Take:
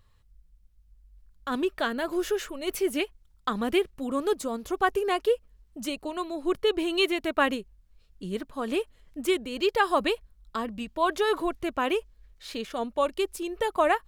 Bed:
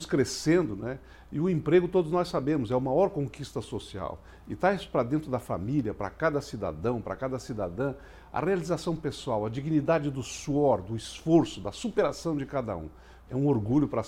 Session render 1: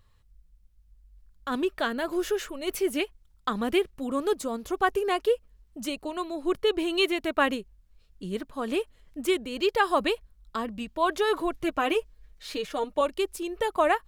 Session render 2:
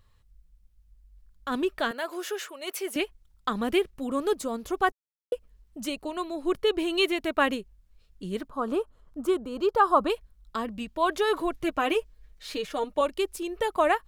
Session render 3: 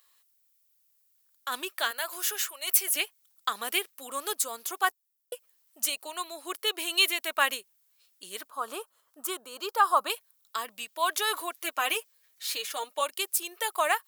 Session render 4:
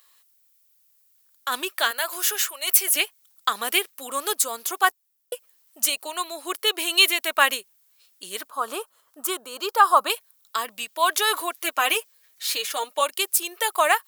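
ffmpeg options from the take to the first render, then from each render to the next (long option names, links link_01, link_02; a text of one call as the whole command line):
ffmpeg -i in.wav -filter_complex "[0:a]asettb=1/sr,asplit=3[link_01][link_02][link_03];[link_01]atrim=end=11.534[link_04];[link_02]atrim=start=11.53:end=13.01,asetpts=PTS-STARTPTS,afade=type=in:duration=0.004:curve=qsin,afade=type=out:start_time=1.476:duration=0.004:curve=qsin,aecho=1:1:6.5:0.69,atrim=end_sample=65268[link_05];[link_03]atrim=start=13.006[link_06];[link_04][link_05]acrossfade=duration=0.004:curve1=hsin:curve2=qsin[link_07];[link_07][link_06]acrossfade=duration=0.004:curve1=qsin:curve2=hsin" out.wav
ffmpeg -i in.wav -filter_complex "[0:a]asettb=1/sr,asplit=3[link_01][link_02][link_03];[link_01]atrim=end=1.914[link_04];[link_02]atrim=start=1.91:end=2.96,asetpts=PTS-STARTPTS,afade=type=in:duration=0.004:curve=qsin,afade=type=out:start_time=1.046:duration=0.004:curve=qsin,highpass=540[link_05];[link_03]atrim=start=2.956[link_06];[link_04][link_05]acrossfade=duration=0.004:curve1=hsin:curve2=qsin[link_07];[link_07][link_06]acrossfade=duration=0.004:curve1=qsin:curve2=hsin,asettb=1/sr,asplit=3[link_08][link_09][link_10];[link_08]atrim=end=8.484[link_11];[link_09]atrim=start=8.48:end=10.1,asetpts=PTS-STARTPTS,afade=type=in:duration=0.004:curve=qsin,afade=type=out:start_time=1.616:duration=0.004:curve=qsin,highshelf=frequency=1600:width_type=q:width=3:gain=-7.5[link_12];[link_10]atrim=start=10.096[link_13];[link_11][link_12]acrossfade=duration=0.004:curve1=hsin:curve2=qsin[link_14];[link_14][link_13]acrossfade=duration=0.004:curve1=qsin:curve2=hsin,asplit=3[link_15][link_16][link_17];[link_15]atrim=end=4.92,asetpts=PTS-STARTPTS,afade=type=out:start_time=4.916:duration=0.004:curve=hsin[link_18];[link_16]atrim=start=4.92:end=5.32,asetpts=PTS-STARTPTS,volume=0[link_19];[link_17]atrim=start=5.32,asetpts=PTS-STARTPTS,afade=type=in:duration=0.004:curve=hsin[link_20];[link_18][link_19][link_20]concat=n=3:v=0:a=1" out.wav
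ffmpeg -i in.wav -af "highpass=810,aemphasis=mode=production:type=75fm" out.wav
ffmpeg -i in.wav -af "volume=6.5dB,alimiter=limit=-2dB:level=0:latency=1" out.wav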